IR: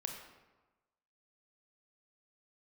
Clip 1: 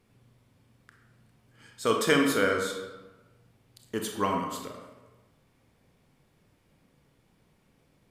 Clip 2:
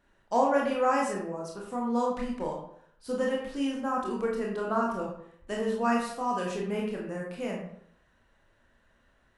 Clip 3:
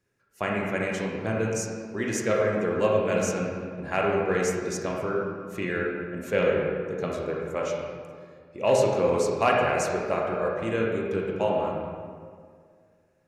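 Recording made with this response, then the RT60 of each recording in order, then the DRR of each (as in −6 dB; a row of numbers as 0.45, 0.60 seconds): 1; 1.2, 0.65, 2.0 seconds; 2.5, −2.5, −2.5 decibels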